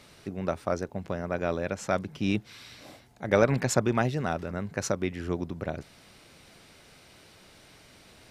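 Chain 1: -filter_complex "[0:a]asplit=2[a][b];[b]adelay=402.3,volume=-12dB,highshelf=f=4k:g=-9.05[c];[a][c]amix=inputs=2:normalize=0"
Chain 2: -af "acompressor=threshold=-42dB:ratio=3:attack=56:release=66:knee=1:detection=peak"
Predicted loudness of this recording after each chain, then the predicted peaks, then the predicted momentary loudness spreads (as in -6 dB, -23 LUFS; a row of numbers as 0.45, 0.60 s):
-30.0, -37.5 LUFS; -7.5, -17.0 dBFS; 16, 18 LU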